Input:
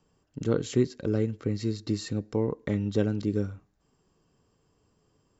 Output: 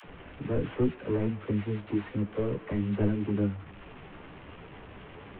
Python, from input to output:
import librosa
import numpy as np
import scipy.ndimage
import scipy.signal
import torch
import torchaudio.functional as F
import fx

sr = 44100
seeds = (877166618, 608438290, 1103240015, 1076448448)

y = fx.delta_mod(x, sr, bps=16000, step_db=-40.5)
y = fx.dispersion(y, sr, late='lows', ms=47.0, hz=460.0)
y = fx.chorus_voices(y, sr, voices=4, hz=1.2, base_ms=13, depth_ms=3.0, mix_pct=35)
y = y * 10.0 ** (2.5 / 20.0)